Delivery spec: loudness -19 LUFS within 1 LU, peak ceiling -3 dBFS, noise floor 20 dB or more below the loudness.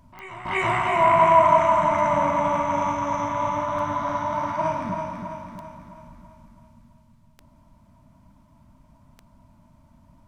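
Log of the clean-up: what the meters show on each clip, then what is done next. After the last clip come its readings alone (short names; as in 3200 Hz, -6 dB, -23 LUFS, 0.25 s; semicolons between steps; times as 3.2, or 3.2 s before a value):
clicks 6; loudness -21.5 LUFS; peak -4.5 dBFS; loudness target -19.0 LUFS
-> de-click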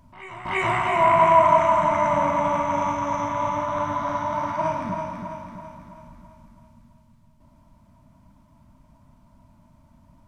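clicks 0; loudness -21.5 LUFS; peak -4.5 dBFS; loudness target -19.0 LUFS
-> gain +2.5 dB; limiter -3 dBFS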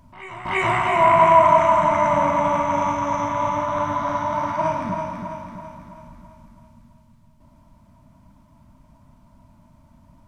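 loudness -19.0 LUFS; peak -3.0 dBFS; noise floor -54 dBFS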